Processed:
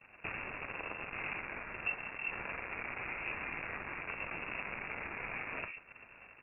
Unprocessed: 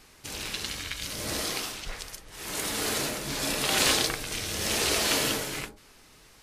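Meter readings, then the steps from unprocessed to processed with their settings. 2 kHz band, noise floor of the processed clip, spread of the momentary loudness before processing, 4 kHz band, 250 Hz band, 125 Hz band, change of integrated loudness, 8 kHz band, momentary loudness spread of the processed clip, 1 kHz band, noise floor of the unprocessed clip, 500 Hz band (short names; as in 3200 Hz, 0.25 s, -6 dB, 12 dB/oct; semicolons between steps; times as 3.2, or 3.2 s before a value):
-5.0 dB, -59 dBFS, 15 LU, -28.0 dB, -15.0 dB, -13.0 dB, -12.0 dB, under -40 dB, 4 LU, -8.5 dB, -55 dBFS, -14.0 dB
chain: switching dead time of 0.14 ms; expander -48 dBFS; limiter -21 dBFS, peak gain reduction 10 dB; compressor 12:1, threshold -50 dBFS, peak gain reduction 20.5 dB; inverted band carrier 2700 Hz; gain +15.5 dB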